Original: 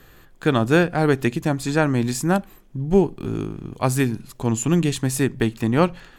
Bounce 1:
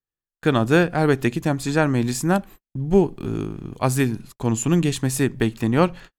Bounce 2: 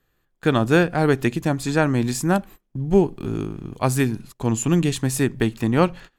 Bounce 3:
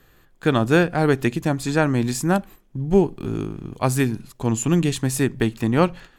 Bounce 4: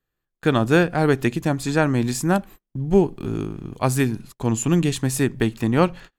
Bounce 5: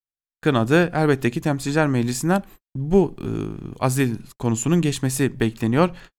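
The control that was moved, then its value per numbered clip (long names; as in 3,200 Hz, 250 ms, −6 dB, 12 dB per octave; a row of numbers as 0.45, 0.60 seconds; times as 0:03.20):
noise gate, range: −47, −20, −6, −32, −59 decibels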